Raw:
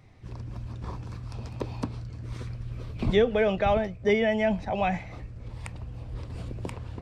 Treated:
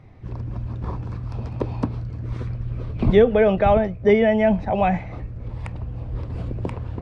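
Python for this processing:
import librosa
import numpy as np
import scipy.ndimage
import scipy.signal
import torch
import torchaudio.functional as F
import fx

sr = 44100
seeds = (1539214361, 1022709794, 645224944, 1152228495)

y = fx.lowpass(x, sr, hz=1300.0, slope=6)
y = y * 10.0 ** (8.0 / 20.0)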